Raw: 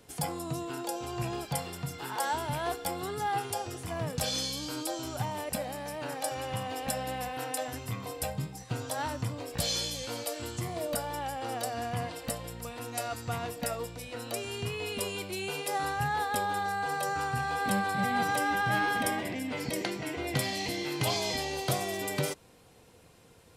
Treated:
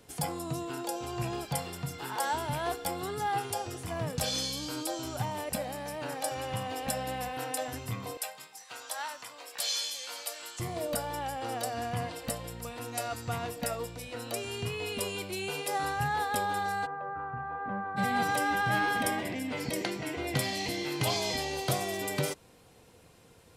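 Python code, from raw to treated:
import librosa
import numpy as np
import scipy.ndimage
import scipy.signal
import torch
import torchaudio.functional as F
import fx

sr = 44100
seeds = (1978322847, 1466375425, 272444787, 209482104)

y = fx.highpass(x, sr, hz=950.0, slope=12, at=(8.17, 10.6))
y = fx.ladder_lowpass(y, sr, hz=1600.0, resonance_pct=35, at=(16.85, 17.96), fade=0.02)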